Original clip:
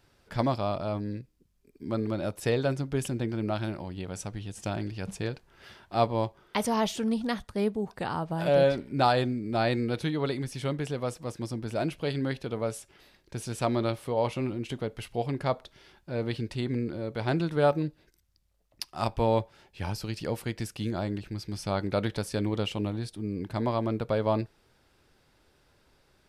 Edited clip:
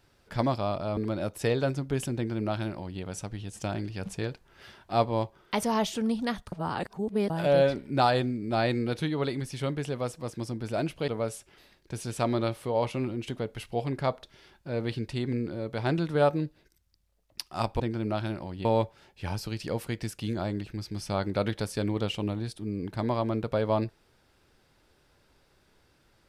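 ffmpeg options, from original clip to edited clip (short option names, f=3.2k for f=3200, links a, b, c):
-filter_complex "[0:a]asplit=7[a][b][c][d][e][f][g];[a]atrim=end=0.972[h];[b]atrim=start=1.988:end=7.542[i];[c]atrim=start=7.538:end=8.322,asetpts=PTS-STARTPTS,areverse[j];[d]atrim=start=8.318:end=12.102[k];[e]atrim=start=12.498:end=19.222[l];[f]atrim=start=3.178:end=4.032[m];[g]atrim=start=19.218[n];[h][i]acrossfade=d=0.004:c1=hsin:c2=hsin[o];[o][j]acrossfade=d=0.004:c1=hsin:c2=hsin[p];[p][k]acrossfade=d=0.004:c1=hsin:c2=hsin[q];[q][l]acrossfade=d=0.004:c1=hsin:c2=hsin[r];[r][m]acrossfade=d=0.004:c1=hsin:c2=hsin[s];[s][n]acrossfade=d=0.004:c1=hsin:c2=hsin"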